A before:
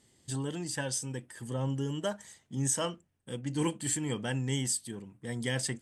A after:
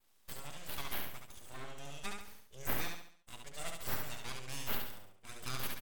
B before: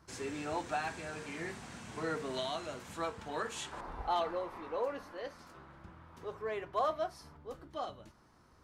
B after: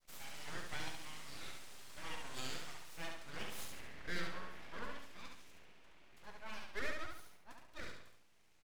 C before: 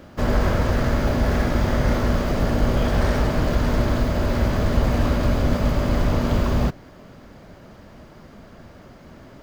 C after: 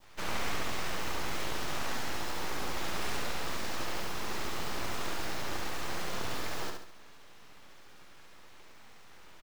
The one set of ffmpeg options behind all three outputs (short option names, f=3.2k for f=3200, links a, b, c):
-filter_complex "[0:a]highpass=f=1k:p=1,adynamicequalizer=threshold=0.00562:dfrequency=1500:dqfactor=0.74:tfrequency=1500:tqfactor=0.74:attack=5:release=100:ratio=0.375:range=2:mode=cutabove:tftype=bell,aeval=exprs='abs(val(0))':c=same,asplit=2[a][b];[b]aecho=0:1:70|140|210|280|350:0.631|0.265|0.111|0.0467|0.0196[c];[a][c]amix=inputs=2:normalize=0,volume=-2.5dB"